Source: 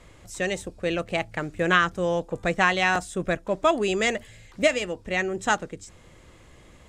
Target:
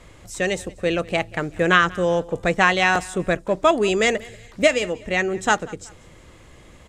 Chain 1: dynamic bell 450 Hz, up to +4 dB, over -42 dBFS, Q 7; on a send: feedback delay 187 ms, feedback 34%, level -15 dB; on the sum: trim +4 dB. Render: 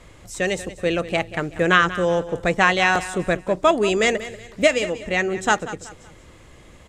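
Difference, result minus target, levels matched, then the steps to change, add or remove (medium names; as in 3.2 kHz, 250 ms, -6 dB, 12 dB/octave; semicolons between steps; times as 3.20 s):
echo-to-direct +7.5 dB
change: feedback delay 187 ms, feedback 34%, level -22.5 dB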